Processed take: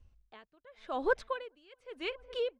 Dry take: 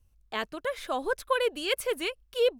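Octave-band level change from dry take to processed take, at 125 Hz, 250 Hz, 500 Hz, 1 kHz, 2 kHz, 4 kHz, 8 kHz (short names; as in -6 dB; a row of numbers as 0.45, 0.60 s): n/a, -6.0 dB, -7.5 dB, -6.5 dB, -6.5 dB, -12.0 dB, under -20 dB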